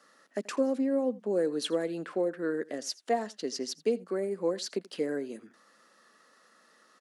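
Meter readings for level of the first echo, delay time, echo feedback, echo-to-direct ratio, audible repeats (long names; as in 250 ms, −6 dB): −21.5 dB, 83 ms, repeats not evenly spaced, −21.5 dB, 1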